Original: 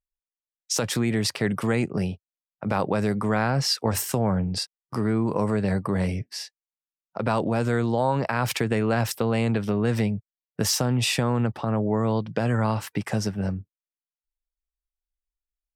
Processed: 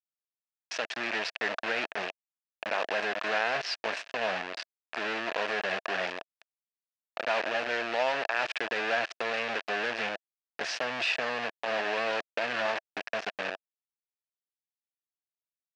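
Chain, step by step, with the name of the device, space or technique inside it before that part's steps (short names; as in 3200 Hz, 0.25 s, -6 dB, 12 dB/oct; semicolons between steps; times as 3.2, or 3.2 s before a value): 11.57–12.68 notches 50/100/150 Hz; hand-held game console (bit-crush 4-bit; speaker cabinet 480–5000 Hz, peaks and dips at 660 Hz +9 dB, 1700 Hz +10 dB, 2600 Hz +9 dB); gain -8.5 dB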